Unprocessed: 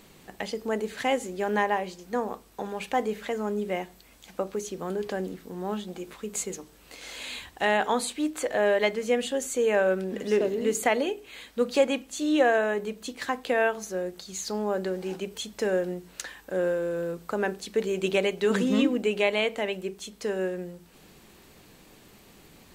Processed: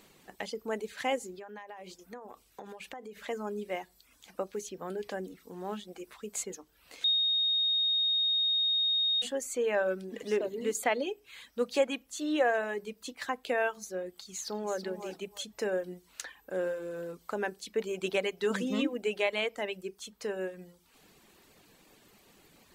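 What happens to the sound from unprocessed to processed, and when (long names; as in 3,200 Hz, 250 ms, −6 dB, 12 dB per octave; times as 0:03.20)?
0:01.38–0:03.29: downward compressor 16 to 1, threshold −34 dBFS
0:07.04–0:09.22: beep over 3,720 Hz −18.5 dBFS
0:14.16–0:14.79: delay throw 330 ms, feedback 25%, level −8.5 dB
whole clip: reverb reduction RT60 0.69 s; low-shelf EQ 190 Hz −7 dB; level −4 dB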